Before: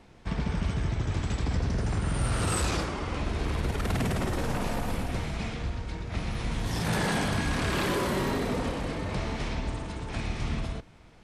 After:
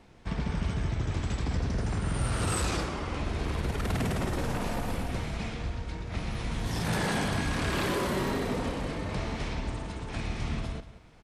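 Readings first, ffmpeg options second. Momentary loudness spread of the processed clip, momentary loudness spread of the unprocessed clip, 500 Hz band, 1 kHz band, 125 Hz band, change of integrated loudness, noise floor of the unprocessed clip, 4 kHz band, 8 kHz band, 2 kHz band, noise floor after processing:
8 LU, 7 LU, −1.0 dB, −1.5 dB, −1.5 dB, −1.5 dB, −53 dBFS, −1.5 dB, −1.5 dB, −1.5 dB, −48 dBFS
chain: -filter_complex "[0:a]asplit=2[link_01][link_02];[link_02]adelay=180.8,volume=-14dB,highshelf=frequency=4000:gain=-4.07[link_03];[link_01][link_03]amix=inputs=2:normalize=0,volume=-1.5dB"

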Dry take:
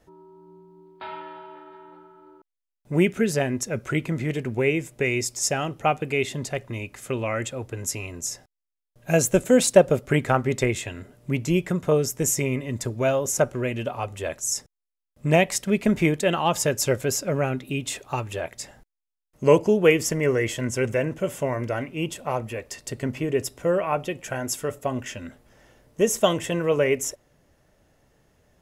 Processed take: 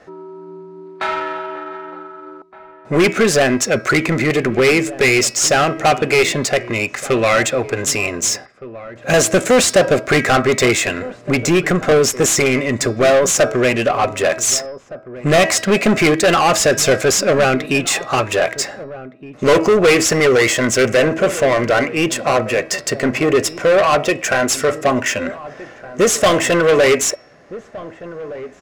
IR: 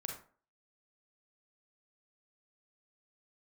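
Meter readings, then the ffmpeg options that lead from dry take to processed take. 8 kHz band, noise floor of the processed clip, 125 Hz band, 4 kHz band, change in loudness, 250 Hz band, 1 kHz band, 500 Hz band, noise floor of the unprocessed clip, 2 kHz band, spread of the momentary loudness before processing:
+10.5 dB, −42 dBFS, +4.0 dB, +13.0 dB, +9.0 dB, +7.5 dB, +11.0 dB, +9.0 dB, −84 dBFS, +13.0 dB, 13 LU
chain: -filter_complex "[0:a]equalizer=frequency=3200:width=3.1:gain=-7,bandreject=frequency=322.2:width_type=h:width=4,bandreject=frequency=644.4:width_type=h:width=4,bandreject=frequency=966.6:width_type=h:width=4,bandreject=frequency=1288.8:width_type=h:width=4,bandreject=frequency=1611:width_type=h:width=4,bandreject=frequency=1933.2:width_type=h:width=4,bandreject=frequency=2255.4:width_type=h:width=4,bandreject=frequency=2577.6:width_type=h:width=4,bandreject=frequency=2899.8:width_type=h:width=4,bandreject=frequency=3222:width_type=h:width=4,bandreject=frequency=3544.2:width_type=h:width=4,bandreject=frequency=3866.4:width_type=h:width=4,bandreject=frequency=4188.6:width_type=h:width=4,bandreject=frequency=4510.8:width_type=h:width=4,bandreject=frequency=4833:width_type=h:width=4,bandreject=frequency=5155.2:width_type=h:width=4,bandreject=frequency=5477.4:width_type=h:width=4,asplit=2[link_01][link_02];[link_02]highpass=frequency=720:poles=1,volume=29dB,asoftclip=type=tanh:threshold=-2.5dB[link_03];[link_01][link_03]amix=inputs=2:normalize=0,lowpass=frequency=7800:poles=1,volume=-6dB,adynamicsmooth=sensitivity=2:basefreq=4200,asuperstop=centerf=910:order=4:qfactor=7.5,asplit=2[link_04][link_05];[link_05]adelay=1516,volume=-16dB,highshelf=frequency=4000:gain=-34.1[link_06];[link_04][link_06]amix=inputs=2:normalize=0,volume=-1dB"

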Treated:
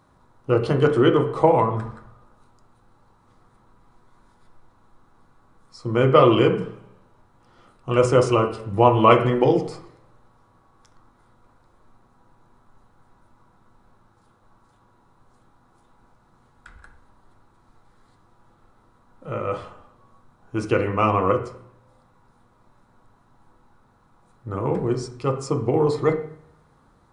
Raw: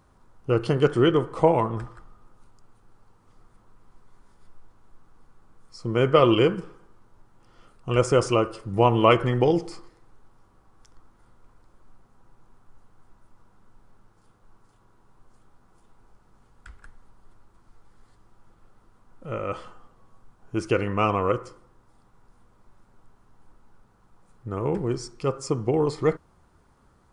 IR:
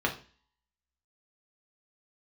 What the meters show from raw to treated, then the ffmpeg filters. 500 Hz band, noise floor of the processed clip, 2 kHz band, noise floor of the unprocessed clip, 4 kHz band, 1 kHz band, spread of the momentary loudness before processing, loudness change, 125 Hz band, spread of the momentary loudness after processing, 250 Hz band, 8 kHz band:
+3.0 dB, −60 dBFS, +2.0 dB, −60 dBFS, 0.0 dB, +4.5 dB, 16 LU, +3.0 dB, +3.0 dB, 17 LU, +2.5 dB, −0.5 dB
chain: -filter_complex "[0:a]equalizer=frequency=3900:width_type=o:width=0.23:gain=9,asplit=2[link_01][link_02];[1:a]atrim=start_sample=2205,asetrate=26460,aresample=44100[link_03];[link_02][link_03]afir=irnorm=-1:irlink=0,volume=-10dB[link_04];[link_01][link_04]amix=inputs=2:normalize=0,volume=-3.5dB"

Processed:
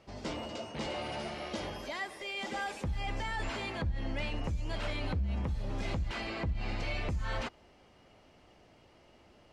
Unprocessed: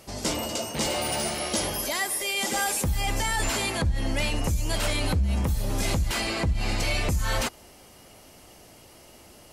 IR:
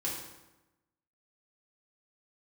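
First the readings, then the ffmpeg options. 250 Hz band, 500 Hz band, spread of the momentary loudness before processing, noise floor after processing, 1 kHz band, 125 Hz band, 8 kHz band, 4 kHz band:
−8.5 dB, −8.5 dB, 2 LU, −61 dBFS, −8.5 dB, −8.5 dB, −24.5 dB, −12.5 dB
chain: -af "lowpass=3300,volume=-8.5dB"

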